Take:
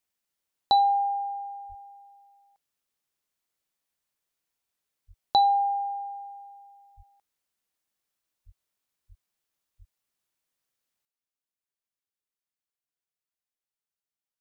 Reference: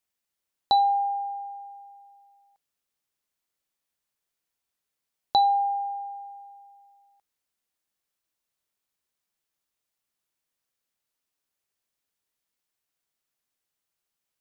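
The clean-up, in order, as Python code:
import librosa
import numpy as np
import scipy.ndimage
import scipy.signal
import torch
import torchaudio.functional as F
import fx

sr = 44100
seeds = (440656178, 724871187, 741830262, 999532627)

y = fx.fix_deplosive(x, sr, at_s=(1.68, 5.07, 6.96, 8.45, 9.08, 9.78))
y = fx.fix_level(y, sr, at_s=11.05, step_db=11.5)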